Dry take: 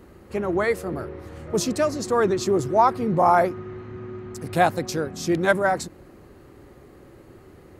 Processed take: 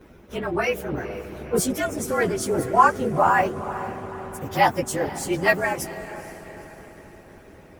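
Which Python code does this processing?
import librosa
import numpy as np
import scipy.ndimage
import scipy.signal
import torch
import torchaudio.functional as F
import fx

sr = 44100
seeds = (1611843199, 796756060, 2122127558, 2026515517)

y = fx.partial_stretch(x, sr, pct=110)
y = fx.echo_diffused(y, sr, ms=467, feedback_pct=49, wet_db=-12)
y = fx.hpss(y, sr, part='harmonic', gain_db=-11)
y = y * librosa.db_to_amplitude(7.5)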